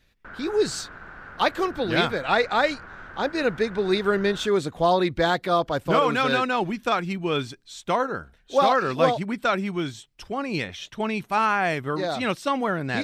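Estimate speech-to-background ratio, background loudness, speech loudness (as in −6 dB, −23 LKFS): 18.0 dB, −42.0 LKFS, −24.0 LKFS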